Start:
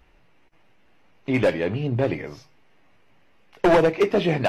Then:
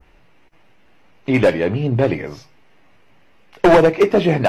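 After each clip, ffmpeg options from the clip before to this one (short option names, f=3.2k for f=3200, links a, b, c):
-af "adynamicequalizer=threshold=0.00891:dfrequency=3400:dqfactor=0.78:tfrequency=3400:tqfactor=0.78:attack=5:release=100:ratio=0.375:range=2.5:mode=cutabove:tftype=bell,volume=6dB"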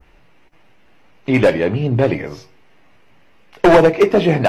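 -af "bandreject=f=93.94:t=h:w=4,bandreject=f=187.88:t=h:w=4,bandreject=f=281.82:t=h:w=4,bandreject=f=375.76:t=h:w=4,bandreject=f=469.7:t=h:w=4,bandreject=f=563.64:t=h:w=4,bandreject=f=657.58:t=h:w=4,bandreject=f=751.52:t=h:w=4,bandreject=f=845.46:t=h:w=4,bandreject=f=939.4:t=h:w=4,bandreject=f=1.03334k:t=h:w=4,volume=1.5dB"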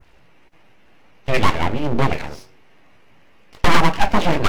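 -af "aeval=exprs='abs(val(0))':c=same"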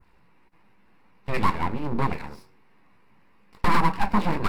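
-af "equalizer=f=200:t=o:w=0.33:g=8,equalizer=f=630:t=o:w=0.33:g=-7,equalizer=f=1k:t=o:w=0.33:g=7,equalizer=f=3.15k:t=o:w=0.33:g=-8,equalizer=f=6.3k:t=o:w=0.33:g=-10,volume=-8dB"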